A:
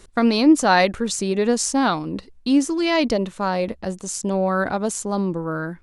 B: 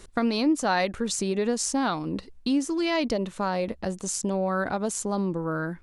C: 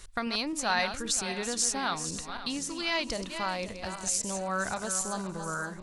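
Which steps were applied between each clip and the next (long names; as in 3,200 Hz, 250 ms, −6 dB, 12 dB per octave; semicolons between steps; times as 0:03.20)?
downward compressor 2 to 1, threshold −27 dBFS, peak gain reduction 10 dB
feedback delay that plays each chunk backwards 264 ms, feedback 59%, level −9 dB; parametric band 310 Hz −14.5 dB 2.5 octaves; level +1.5 dB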